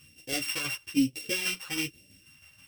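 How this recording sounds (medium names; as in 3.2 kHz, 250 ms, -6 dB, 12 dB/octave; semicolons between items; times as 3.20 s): a buzz of ramps at a fixed pitch in blocks of 16 samples; phasing stages 2, 1.1 Hz, lowest notch 340–1100 Hz; tremolo saw down 6.2 Hz, depth 60%; a shimmering, thickened sound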